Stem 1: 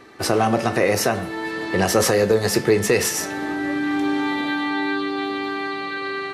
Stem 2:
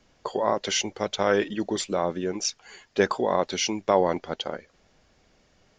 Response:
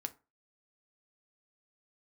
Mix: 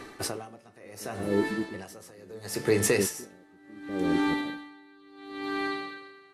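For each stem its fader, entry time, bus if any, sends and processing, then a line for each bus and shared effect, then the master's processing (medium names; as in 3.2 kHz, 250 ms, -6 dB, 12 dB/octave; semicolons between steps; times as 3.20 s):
+1.0 dB, 0.00 s, send -9.5 dB, peaking EQ 9.8 kHz +7 dB 0.96 oct; auto duck -12 dB, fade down 0.40 s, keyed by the second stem
+2.5 dB, 0.00 s, no send, inverse Chebyshev low-pass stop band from 1.7 kHz, stop band 70 dB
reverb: on, RT60 0.30 s, pre-delay 4 ms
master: logarithmic tremolo 0.71 Hz, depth 29 dB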